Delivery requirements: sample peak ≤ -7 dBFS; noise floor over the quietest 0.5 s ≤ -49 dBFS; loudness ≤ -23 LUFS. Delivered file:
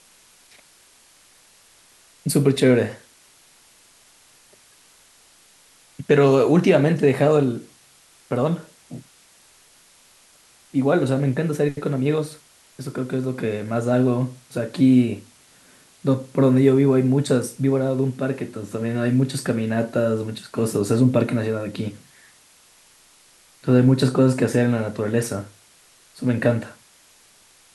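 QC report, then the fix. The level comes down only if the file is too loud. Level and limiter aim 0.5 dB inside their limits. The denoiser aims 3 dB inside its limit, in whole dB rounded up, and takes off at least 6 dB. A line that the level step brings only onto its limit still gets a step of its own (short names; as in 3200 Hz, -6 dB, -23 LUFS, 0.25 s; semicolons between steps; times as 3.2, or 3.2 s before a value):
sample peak -4.0 dBFS: fail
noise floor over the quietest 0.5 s -54 dBFS: OK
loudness -20.5 LUFS: fail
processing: gain -3 dB; limiter -7.5 dBFS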